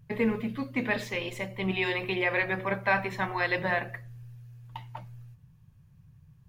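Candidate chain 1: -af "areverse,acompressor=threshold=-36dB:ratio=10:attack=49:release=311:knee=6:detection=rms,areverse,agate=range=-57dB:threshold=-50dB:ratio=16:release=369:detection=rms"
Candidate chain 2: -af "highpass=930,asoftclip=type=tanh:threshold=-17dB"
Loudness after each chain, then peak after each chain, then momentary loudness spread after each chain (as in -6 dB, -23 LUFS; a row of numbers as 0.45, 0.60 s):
-40.0, -32.5 LUFS; -23.5, -18.5 dBFS; 10, 19 LU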